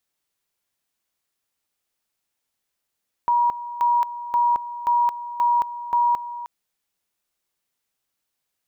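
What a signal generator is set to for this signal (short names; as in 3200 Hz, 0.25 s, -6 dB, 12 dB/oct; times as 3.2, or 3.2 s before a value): two-level tone 957 Hz -15.5 dBFS, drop 14 dB, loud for 0.22 s, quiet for 0.31 s, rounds 6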